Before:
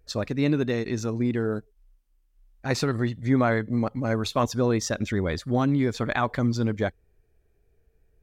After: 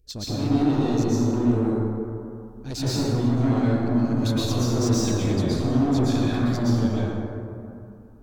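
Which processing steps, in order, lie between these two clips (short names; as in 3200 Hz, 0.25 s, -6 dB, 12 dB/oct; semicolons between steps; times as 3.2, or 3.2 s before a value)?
band shelf 1100 Hz -14 dB 2.4 oct; soft clip -27.5 dBFS, distortion -8 dB; plate-style reverb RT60 2.6 s, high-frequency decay 0.35×, pre-delay 0.105 s, DRR -9 dB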